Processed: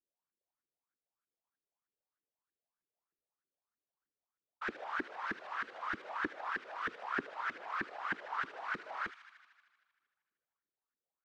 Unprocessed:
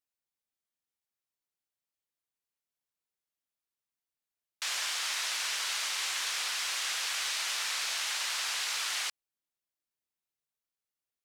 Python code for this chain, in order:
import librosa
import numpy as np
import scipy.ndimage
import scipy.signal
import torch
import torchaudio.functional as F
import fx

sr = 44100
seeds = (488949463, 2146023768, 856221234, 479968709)

y = fx.filter_lfo_lowpass(x, sr, shape='saw_up', hz=3.2, low_hz=290.0, high_hz=1700.0, q=6.9)
y = fx.echo_wet_highpass(y, sr, ms=77, feedback_pct=74, hz=2500.0, wet_db=-8.0)
y = fx.whisperise(y, sr, seeds[0])
y = y * 10.0 ** (-5.0 / 20.0)